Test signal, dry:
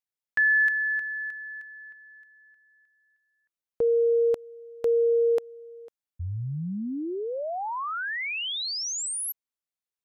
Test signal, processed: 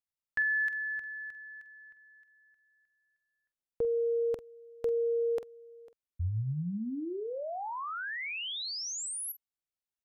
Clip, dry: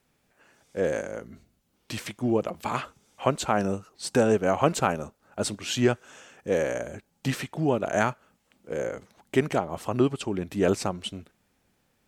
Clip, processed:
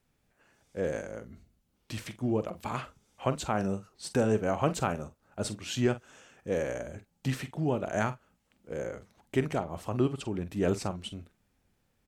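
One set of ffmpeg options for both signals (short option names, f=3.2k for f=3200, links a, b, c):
-filter_complex "[0:a]lowshelf=f=120:g=10.5,asplit=2[a][b];[b]adelay=46,volume=-13dB[c];[a][c]amix=inputs=2:normalize=0,volume=-6.5dB"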